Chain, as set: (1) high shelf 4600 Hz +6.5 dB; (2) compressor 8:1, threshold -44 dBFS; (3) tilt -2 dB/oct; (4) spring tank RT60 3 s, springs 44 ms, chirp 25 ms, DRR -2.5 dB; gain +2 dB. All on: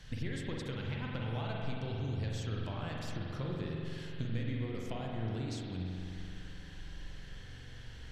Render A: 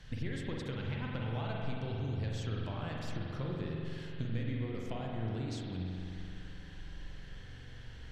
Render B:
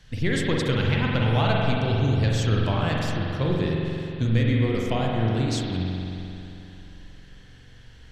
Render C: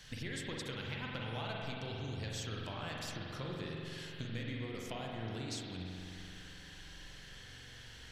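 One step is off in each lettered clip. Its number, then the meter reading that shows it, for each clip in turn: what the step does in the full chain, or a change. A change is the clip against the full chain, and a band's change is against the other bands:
1, 8 kHz band -3.0 dB; 2, mean gain reduction 9.5 dB; 3, 125 Hz band -7.0 dB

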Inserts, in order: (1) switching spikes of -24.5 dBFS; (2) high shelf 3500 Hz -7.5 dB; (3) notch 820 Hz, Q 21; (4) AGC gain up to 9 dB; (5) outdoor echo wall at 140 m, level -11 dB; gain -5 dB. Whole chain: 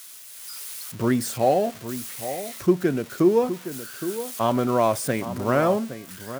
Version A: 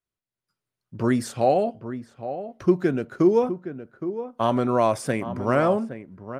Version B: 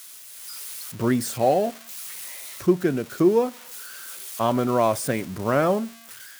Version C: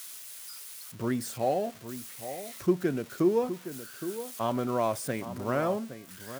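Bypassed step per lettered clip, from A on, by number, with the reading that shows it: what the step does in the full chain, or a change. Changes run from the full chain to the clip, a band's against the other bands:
1, distortion -9 dB; 5, echo-to-direct -13.5 dB to none; 4, loudness change -7.5 LU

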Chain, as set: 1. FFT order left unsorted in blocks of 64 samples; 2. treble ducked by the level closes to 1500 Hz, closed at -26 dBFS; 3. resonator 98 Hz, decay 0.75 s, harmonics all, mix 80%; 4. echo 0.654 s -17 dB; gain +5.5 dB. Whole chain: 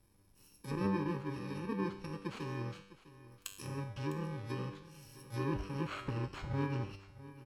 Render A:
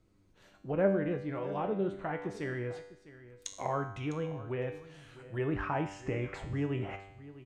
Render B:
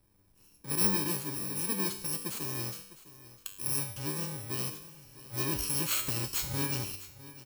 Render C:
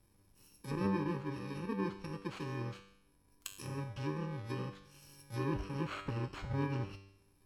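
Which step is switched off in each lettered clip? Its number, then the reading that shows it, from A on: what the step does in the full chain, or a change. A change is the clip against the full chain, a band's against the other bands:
1, 500 Hz band +6.0 dB; 2, 8 kHz band +22.0 dB; 4, momentary loudness spread change -3 LU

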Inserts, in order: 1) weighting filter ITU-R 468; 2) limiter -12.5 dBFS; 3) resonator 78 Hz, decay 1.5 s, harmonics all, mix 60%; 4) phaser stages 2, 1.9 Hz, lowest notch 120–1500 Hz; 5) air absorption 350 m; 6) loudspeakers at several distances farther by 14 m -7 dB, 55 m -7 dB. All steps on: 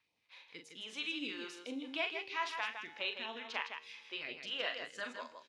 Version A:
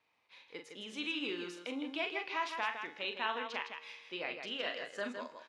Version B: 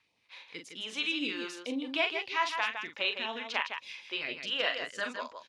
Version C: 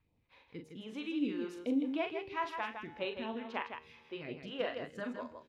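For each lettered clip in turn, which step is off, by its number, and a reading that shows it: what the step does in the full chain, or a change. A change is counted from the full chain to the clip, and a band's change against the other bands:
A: 4, 8 kHz band -4.5 dB; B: 3, loudness change +7.0 LU; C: 1, 4 kHz band -12.0 dB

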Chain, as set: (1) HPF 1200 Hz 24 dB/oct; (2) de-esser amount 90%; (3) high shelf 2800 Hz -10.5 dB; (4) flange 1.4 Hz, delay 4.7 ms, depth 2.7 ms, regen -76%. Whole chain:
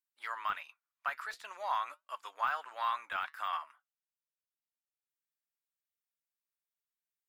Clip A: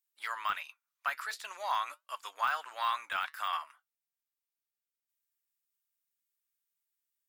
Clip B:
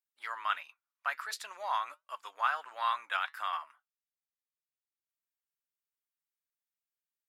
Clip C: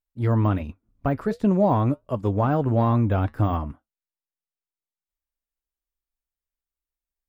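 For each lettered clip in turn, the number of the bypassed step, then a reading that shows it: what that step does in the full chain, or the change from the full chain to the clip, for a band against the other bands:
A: 3, 4 kHz band +5.0 dB; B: 2, crest factor change +2.0 dB; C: 1, crest factor change -6.0 dB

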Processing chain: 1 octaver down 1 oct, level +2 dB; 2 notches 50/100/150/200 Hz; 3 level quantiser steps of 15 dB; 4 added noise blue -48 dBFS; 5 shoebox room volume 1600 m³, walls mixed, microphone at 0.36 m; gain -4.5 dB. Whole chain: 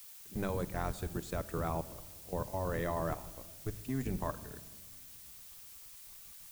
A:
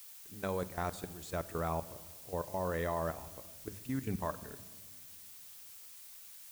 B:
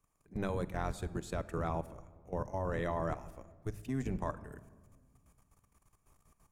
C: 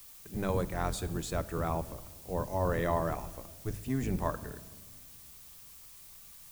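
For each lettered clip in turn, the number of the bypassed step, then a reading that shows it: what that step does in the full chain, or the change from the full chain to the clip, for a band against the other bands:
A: 1, 125 Hz band -3.0 dB; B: 4, 8 kHz band -7.5 dB; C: 3, momentary loudness spread change +4 LU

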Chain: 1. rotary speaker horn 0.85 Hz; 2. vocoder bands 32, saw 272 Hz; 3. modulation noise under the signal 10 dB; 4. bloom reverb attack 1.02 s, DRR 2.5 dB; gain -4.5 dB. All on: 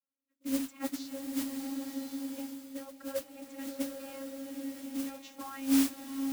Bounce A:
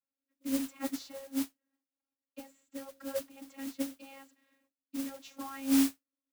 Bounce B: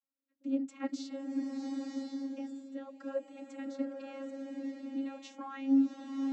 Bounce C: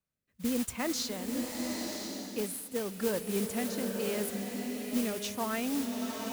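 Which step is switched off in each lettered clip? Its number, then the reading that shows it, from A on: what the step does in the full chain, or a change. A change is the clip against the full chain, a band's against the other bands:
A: 4, momentary loudness spread change +9 LU; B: 3, 8 kHz band -15.0 dB; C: 2, 250 Hz band -6.5 dB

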